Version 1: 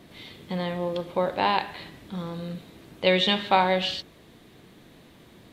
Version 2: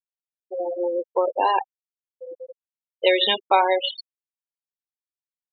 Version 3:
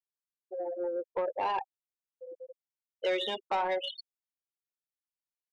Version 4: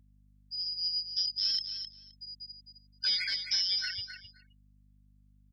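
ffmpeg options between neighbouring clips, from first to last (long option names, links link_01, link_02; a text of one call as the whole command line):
ffmpeg -i in.wav -filter_complex "[0:a]highpass=frequency=290:width=0.5412,highpass=frequency=290:width=1.3066,afftfilt=real='re*gte(hypot(re,im),0.112)':imag='im*gte(hypot(re,im),0.112)':win_size=1024:overlap=0.75,asplit=2[link_01][link_02];[link_02]acompressor=threshold=-31dB:ratio=6,volume=0.5dB[link_03];[link_01][link_03]amix=inputs=2:normalize=0,volume=1.5dB" out.wav
ffmpeg -i in.wav -filter_complex "[0:a]acrossover=split=530|970[link_01][link_02][link_03];[link_03]alimiter=limit=-18dB:level=0:latency=1:release=52[link_04];[link_01][link_02][link_04]amix=inputs=3:normalize=0,asoftclip=type=tanh:threshold=-15.5dB,volume=-8dB" out.wav
ffmpeg -i in.wav -af "afftfilt=real='real(if(lt(b,272),68*(eq(floor(b/68),0)*3+eq(floor(b/68),1)*2+eq(floor(b/68),2)*1+eq(floor(b/68),3)*0)+mod(b,68),b),0)':imag='imag(if(lt(b,272),68*(eq(floor(b/68),0)*3+eq(floor(b/68),1)*2+eq(floor(b/68),2)*1+eq(floor(b/68),3)*0)+mod(b,68),b),0)':win_size=2048:overlap=0.75,aecho=1:1:261|522:0.376|0.0601,aeval=exprs='val(0)+0.000891*(sin(2*PI*50*n/s)+sin(2*PI*2*50*n/s)/2+sin(2*PI*3*50*n/s)/3+sin(2*PI*4*50*n/s)/4+sin(2*PI*5*50*n/s)/5)':channel_layout=same" out.wav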